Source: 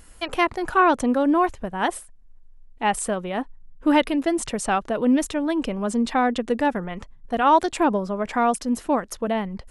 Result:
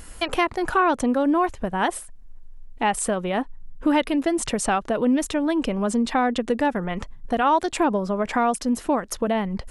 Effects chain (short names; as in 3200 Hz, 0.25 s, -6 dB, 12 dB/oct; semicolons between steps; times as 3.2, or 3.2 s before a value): compressor 2:1, threshold -32 dBFS, peak gain reduction 11 dB; gain +7.5 dB